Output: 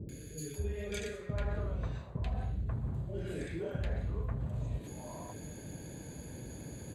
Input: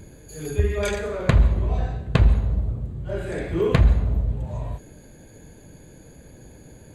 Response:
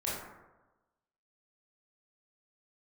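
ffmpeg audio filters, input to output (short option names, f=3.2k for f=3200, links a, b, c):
-filter_complex "[0:a]highpass=61,areverse,acompressor=threshold=-34dB:ratio=12,areverse,acrossover=split=510|1600[a][b][c];[c]adelay=90[d];[b]adelay=540[e];[a][e][d]amix=inputs=3:normalize=0,volume=2dB"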